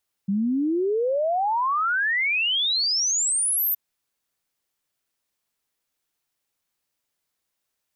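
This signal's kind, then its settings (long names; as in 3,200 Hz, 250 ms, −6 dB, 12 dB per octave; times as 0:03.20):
exponential sine sweep 190 Hz → 14,000 Hz 3.47 s −20 dBFS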